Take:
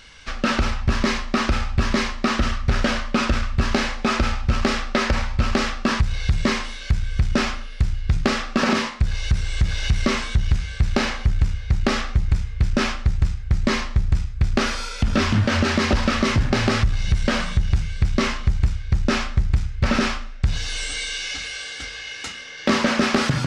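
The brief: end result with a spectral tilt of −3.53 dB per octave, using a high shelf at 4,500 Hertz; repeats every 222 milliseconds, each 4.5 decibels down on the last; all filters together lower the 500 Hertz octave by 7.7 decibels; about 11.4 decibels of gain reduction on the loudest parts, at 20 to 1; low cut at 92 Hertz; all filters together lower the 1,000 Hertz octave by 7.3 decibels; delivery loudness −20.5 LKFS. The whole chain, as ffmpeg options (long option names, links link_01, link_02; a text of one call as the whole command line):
ffmpeg -i in.wav -af "highpass=92,equalizer=frequency=500:width_type=o:gain=-8.5,equalizer=frequency=1000:width_type=o:gain=-8.5,highshelf=frequency=4500:gain=4,acompressor=threshold=-29dB:ratio=20,aecho=1:1:222|444|666|888|1110|1332|1554|1776|1998:0.596|0.357|0.214|0.129|0.0772|0.0463|0.0278|0.0167|0.01,volume=11.5dB" out.wav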